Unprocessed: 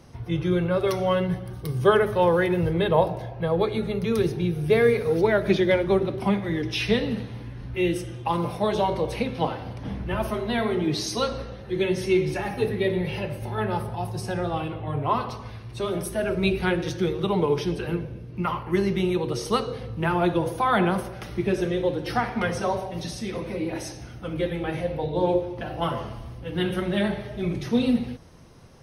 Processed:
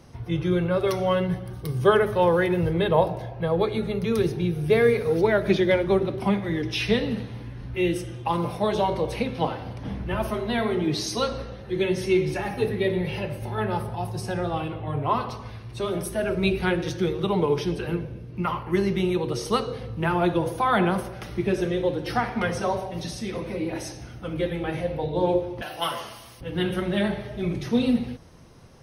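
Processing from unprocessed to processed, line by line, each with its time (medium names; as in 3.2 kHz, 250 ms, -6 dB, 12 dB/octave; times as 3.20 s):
25.62–26.41 s: tilt EQ +4.5 dB/octave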